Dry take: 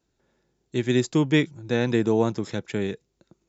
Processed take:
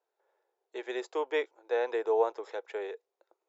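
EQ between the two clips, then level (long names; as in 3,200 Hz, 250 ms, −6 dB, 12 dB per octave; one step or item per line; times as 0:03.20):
elliptic high-pass filter 440 Hz, stop band 60 dB
low-pass filter 1,100 Hz 6 dB per octave
parametric band 840 Hz +5 dB 0.65 octaves
−2.0 dB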